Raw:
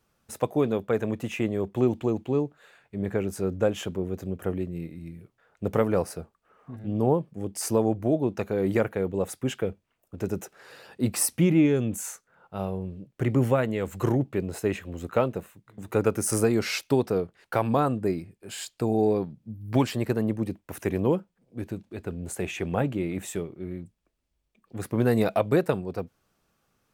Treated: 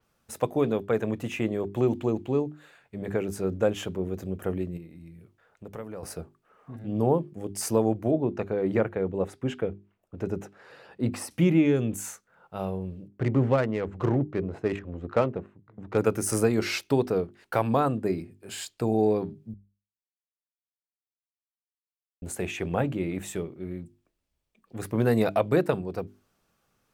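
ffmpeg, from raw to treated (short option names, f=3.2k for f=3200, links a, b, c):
-filter_complex "[0:a]asettb=1/sr,asplit=3[a][b][c];[a]atrim=end=4.774[d];[b]atrim=start=4.77:end=6.03,asetpts=PTS-STARTPTS,afade=t=in:d=0.004:c=qsin,afade=t=out:st=1.256:d=0.004:c=qsin,acompressor=threshold=-46dB:ratio=2:attack=3.2:release=140:knee=1:detection=peak[e];[c]atrim=start=6.026[f];[d][e]acrossfade=d=0.004:c1=hsin:c2=qsin[g];[g][f]acrossfade=d=0.004:c1=qsin:c2=hsin,asettb=1/sr,asplit=3[h][i][j];[h]atrim=end=8.114[k];[i]atrim=start=8.11:end=11.31,asetpts=PTS-STARTPTS,afade=t=in:d=0.004:c=qsin,afade=t=out:st=3.196:d=0.004:c=qsin,aemphasis=mode=reproduction:type=75kf[l];[j]atrim=start=11.306[m];[k][l]acrossfade=d=0.004:c1=hsin:c2=qsin[n];[n][m]acrossfade=d=0.004:c1=qsin:c2=hsin,asettb=1/sr,asplit=3[o][p][q];[o]atrim=end=13.084[r];[p]atrim=start=13.08:end=15.98,asetpts=PTS-STARTPTS,afade=t=in:d=0.004:c=qsin,afade=t=out:st=2.896:d=0.004:c=qsin,adynamicsmooth=sensitivity=4:basefreq=1.3k[s];[q]atrim=start=15.976[t];[r][s]acrossfade=d=0.004:c1=hsin:c2=qsin[u];[u][t]acrossfade=d=0.004:c1=qsin:c2=hsin,asplit=3[v][w][x];[v]atrim=end=19.54,asetpts=PTS-STARTPTS,afade=t=out:st=19.536:d=0.004:c=hsin[y];[w]atrim=start=19.54:end=22.22,asetpts=PTS-STARTPTS,volume=0[z];[x]atrim=start=22.22,asetpts=PTS-STARTPTS,afade=t=in:d=0.004:c=hsin[aa];[y][z][aa]concat=n=3:v=0:a=1,bandreject=f=50:t=h:w=6,bandreject=f=100:t=h:w=6,bandreject=f=150:t=h:w=6,bandreject=f=200:t=h:w=6,bandreject=f=250:t=h:w=6,bandreject=f=300:t=h:w=6,bandreject=f=350:t=h:w=6,bandreject=f=400:t=h:w=6,adynamicequalizer=threshold=0.00355:dfrequency=5500:dqfactor=0.7:tfrequency=5500:tqfactor=0.7:attack=5:release=100:ratio=0.375:range=2:mode=cutabove:tftype=highshelf"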